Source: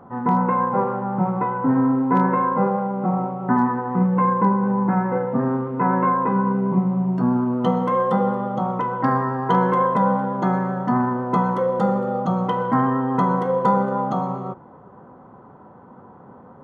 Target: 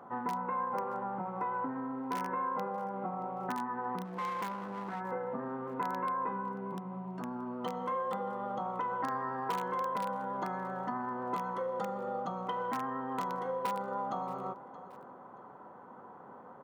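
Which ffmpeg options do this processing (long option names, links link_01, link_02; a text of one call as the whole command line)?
ffmpeg -i in.wav -filter_complex "[0:a]asplit=2[link_01][link_02];[link_02]aeval=exprs='(mod(2.99*val(0)+1,2)-1)/2.99':channel_layout=same,volume=-10.5dB[link_03];[link_01][link_03]amix=inputs=2:normalize=0,aecho=1:1:626|1252:0.0631|0.017,acompressor=threshold=-25dB:ratio=6,asplit=3[link_04][link_05][link_06];[link_04]afade=type=out:start_time=4.04:duration=0.02[link_07];[link_05]aeval=exprs='clip(val(0),-1,0.0335)':channel_layout=same,afade=type=in:start_time=4.04:duration=0.02,afade=type=out:start_time=4.99:duration=0.02[link_08];[link_06]afade=type=in:start_time=4.99:duration=0.02[link_09];[link_07][link_08][link_09]amix=inputs=3:normalize=0,highpass=frequency=630:poles=1,volume=-4dB" out.wav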